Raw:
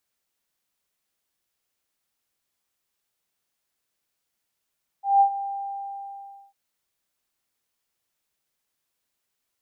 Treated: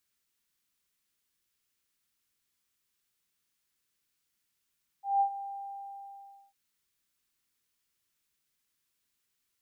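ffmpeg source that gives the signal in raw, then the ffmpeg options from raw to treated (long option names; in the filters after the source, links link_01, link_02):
-f lavfi -i "aevalsrc='0.251*sin(2*PI*794*t)':duration=1.5:sample_rate=44100,afade=type=in:duration=0.176,afade=type=out:start_time=0.176:duration=0.086:silence=0.188,afade=type=out:start_time=0.33:duration=1.17"
-af "equalizer=frequency=670:width=1.4:gain=-11.5"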